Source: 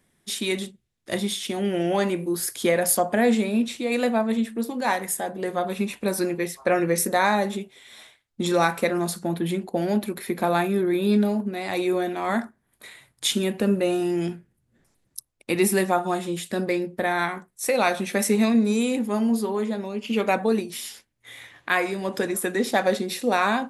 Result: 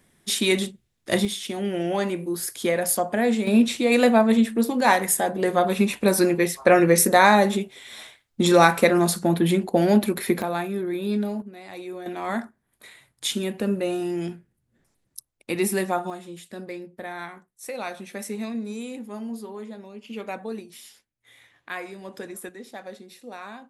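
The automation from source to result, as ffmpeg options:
-af "asetnsamples=n=441:p=0,asendcmd='1.25 volume volume -2dB;3.47 volume volume 5.5dB;10.42 volume volume -5dB;11.42 volume volume -12dB;12.06 volume volume -3dB;16.1 volume volume -11dB;22.49 volume volume -17.5dB',volume=1.78"

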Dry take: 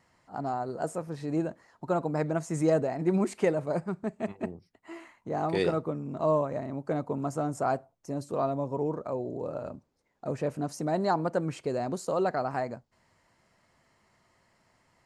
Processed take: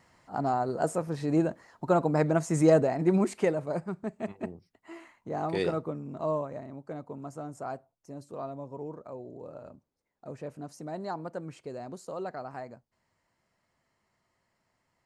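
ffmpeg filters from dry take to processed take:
-af "volume=1.58,afade=t=out:st=2.74:d=0.88:silence=0.501187,afade=t=out:st=5.82:d=1.08:silence=0.446684"

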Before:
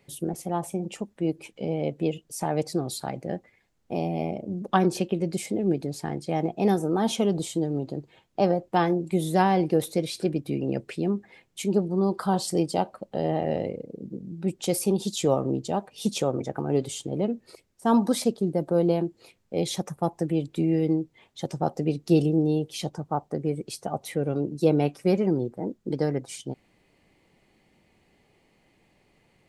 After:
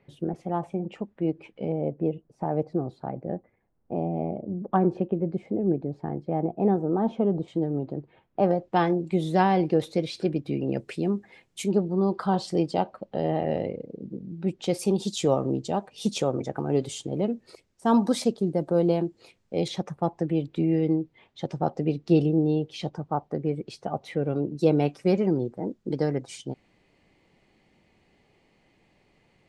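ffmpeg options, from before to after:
-af "asetnsamples=n=441:p=0,asendcmd='1.72 lowpass f 1000;7.48 lowpass f 1900;8.51 lowpass f 4800;10.77 lowpass f 11000;11.71 lowpass f 4200;14.79 lowpass f 7900;19.68 lowpass f 3800;24.59 lowpass f 6900',lowpass=2200"

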